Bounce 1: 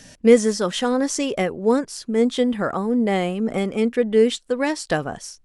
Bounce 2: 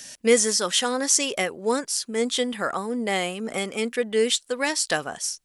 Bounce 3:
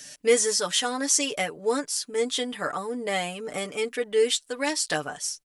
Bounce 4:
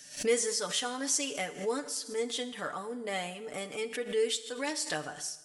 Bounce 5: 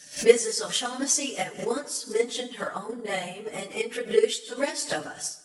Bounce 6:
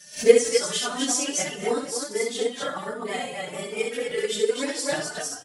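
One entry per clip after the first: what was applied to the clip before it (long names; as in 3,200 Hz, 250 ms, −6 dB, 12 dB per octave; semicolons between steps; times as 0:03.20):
spectral tilt +3.5 dB per octave; level −1.5 dB
comb filter 6.8 ms, depth 70%; level −4 dB
four-comb reverb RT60 1.1 s, combs from 26 ms, DRR 13 dB; background raised ahead of every attack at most 140 dB per second; level −7.5 dB
random phases in long frames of 50 ms; transient designer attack +7 dB, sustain 0 dB; level +2.5 dB
on a send: loudspeakers that aren't time-aligned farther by 22 metres −5 dB, 88 metres −4 dB; on the sum: barber-pole flanger 3 ms +1.4 Hz; level +2.5 dB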